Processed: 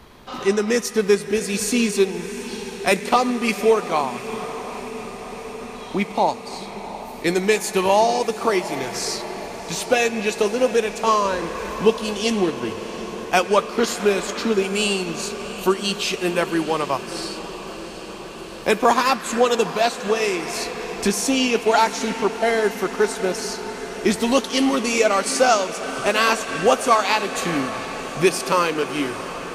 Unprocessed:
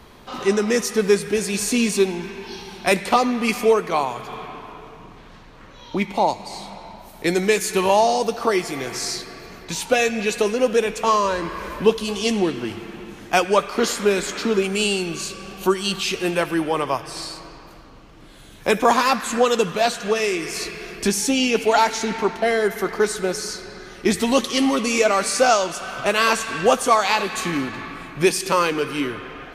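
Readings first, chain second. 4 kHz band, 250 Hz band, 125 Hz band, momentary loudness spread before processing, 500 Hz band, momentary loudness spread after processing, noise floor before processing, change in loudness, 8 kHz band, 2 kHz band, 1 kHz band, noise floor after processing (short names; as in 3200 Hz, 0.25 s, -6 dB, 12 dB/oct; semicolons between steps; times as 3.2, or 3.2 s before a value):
0.0 dB, 0.0 dB, -0.5 dB, 14 LU, 0.0 dB, 13 LU, -44 dBFS, -0.5 dB, -0.5 dB, 0.0 dB, 0.0 dB, -35 dBFS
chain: transient shaper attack 0 dB, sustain -4 dB; diffused feedback echo 0.745 s, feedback 77%, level -14 dB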